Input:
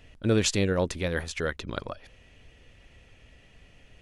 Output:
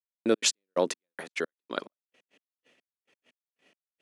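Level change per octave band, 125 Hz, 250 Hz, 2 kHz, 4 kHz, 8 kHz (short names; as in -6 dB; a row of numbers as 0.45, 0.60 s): -20.5, -5.0, -4.0, +0.5, +1.5 dB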